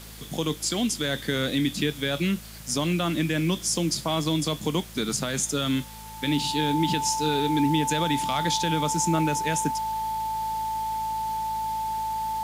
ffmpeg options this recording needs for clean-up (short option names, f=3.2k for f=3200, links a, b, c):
-af "bandreject=f=54.1:t=h:w=4,bandreject=f=108.2:t=h:w=4,bandreject=f=162.3:t=h:w=4,bandreject=f=216.4:t=h:w=4,bandreject=f=880:w=30,afwtdn=0.0056"